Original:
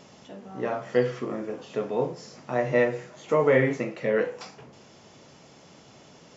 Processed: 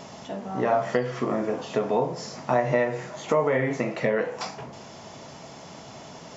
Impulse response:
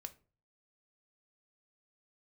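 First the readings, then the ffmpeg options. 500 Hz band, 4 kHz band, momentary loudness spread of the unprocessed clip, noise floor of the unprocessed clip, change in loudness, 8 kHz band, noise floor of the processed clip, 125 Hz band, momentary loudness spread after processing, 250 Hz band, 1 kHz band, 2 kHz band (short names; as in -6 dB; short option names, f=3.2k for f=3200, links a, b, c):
0.0 dB, +5.0 dB, 20 LU, -53 dBFS, 0.0 dB, n/a, -44 dBFS, +1.0 dB, 19 LU, +1.5 dB, +5.5 dB, 0.0 dB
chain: -filter_complex "[0:a]acompressor=threshold=-28dB:ratio=6,asplit=2[a][b];[b]highpass=f=350:w=0.5412,highpass=f=350:w=1.3066,equalizer=f=650:t=q:w=4:g=10,equalizer=f=1k:t=q:w=4:g=7,equalizer=f=1.7k:t=q:w=4:g=-7,lowpass=f=2.7k:w=0.5412,lowpass=f=2.7k:w=1.3066[c];[1:a]atrim=start_sample=2205[d];[c][d]afir=irnorm=-1:irlink=0,volume=-5.5dB[e];[a][e]amix=inputs=2:normalize=0,volume=8dB"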